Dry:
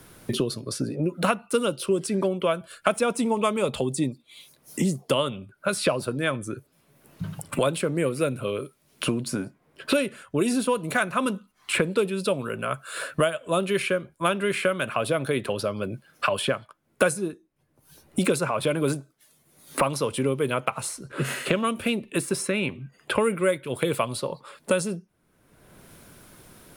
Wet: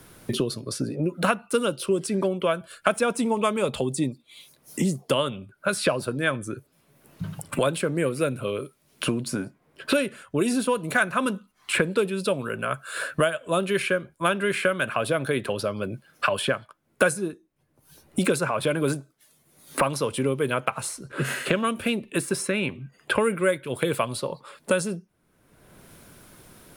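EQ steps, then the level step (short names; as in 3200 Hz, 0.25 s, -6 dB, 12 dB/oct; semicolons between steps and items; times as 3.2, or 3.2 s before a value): dynamic EQ 1600 Hz, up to +6 dB, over -46 dBFS, Q 6.5; 0.0 dB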